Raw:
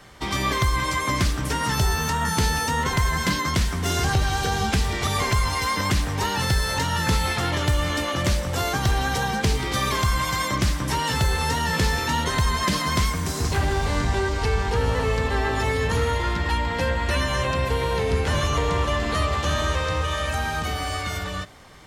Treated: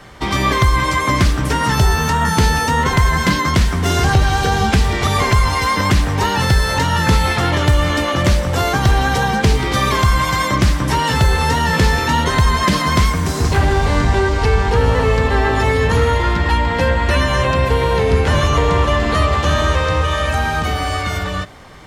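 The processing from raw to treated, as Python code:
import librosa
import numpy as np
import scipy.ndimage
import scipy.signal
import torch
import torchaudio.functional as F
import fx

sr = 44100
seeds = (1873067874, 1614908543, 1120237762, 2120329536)

y = fx.high_shelf(x, sr, hz=3700.0, db=-6.5)
y = y * 10.0 ** (8.5 / 20.0)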